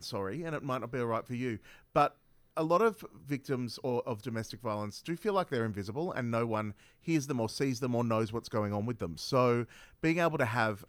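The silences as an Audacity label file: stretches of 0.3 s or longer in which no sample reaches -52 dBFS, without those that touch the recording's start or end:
2.120000	2.570000	silence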